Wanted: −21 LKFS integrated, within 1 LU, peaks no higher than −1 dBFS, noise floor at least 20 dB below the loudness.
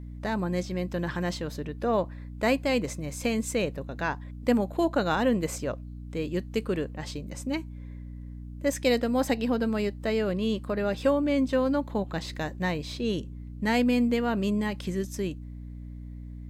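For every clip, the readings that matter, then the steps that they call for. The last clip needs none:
mains hum 60 Hz; hum harmonics up to 300 Hz; level of the hum −37 dBFS; integrated loudness −28.5 LKFS; sample peak −12.0 dBFS; target loudness −21.0 LKFS
→ hum removal 60 Hz, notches 5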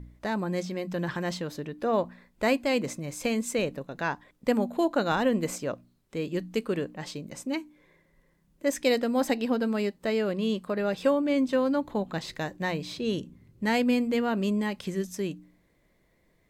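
mains hum none found; integrated loudness −29.0 LKFS; sample peak −12.0 dBFS; target loudness −21.0 LKFS
→ level +8 dB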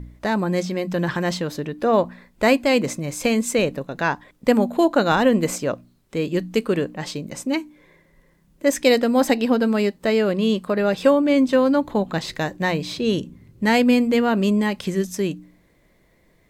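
integrated loudness −21.0 LKFS; sample peak −4.0 dBFS; background noise floor −59 dBFS

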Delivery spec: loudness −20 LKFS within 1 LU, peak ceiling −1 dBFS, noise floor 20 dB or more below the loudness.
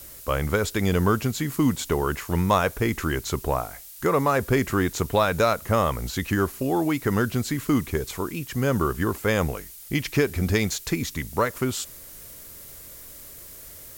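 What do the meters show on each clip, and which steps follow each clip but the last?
background noise floor −43 dBFS; target noise floor −45 dBFS; integrated loudness −24.5 LKFS; sample peak −6.5 dBFS; target loudness −20.0 LKFS
→ broadband denoise 6 dB, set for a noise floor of −43 dBFS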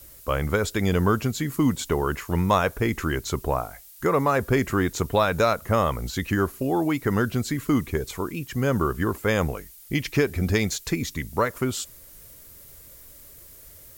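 background noise floor −48 dBFS; integrated loudness −25.0 LKFS; sample peak −7.0 dBFS; target loudness −20.0 LKFS
→ level +5 dB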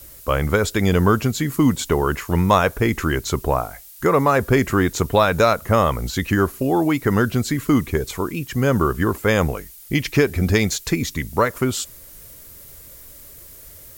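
integrated loudness −20.0 LKFS; sample peak −2.0 dBFS; background noise floor −43 dBFS

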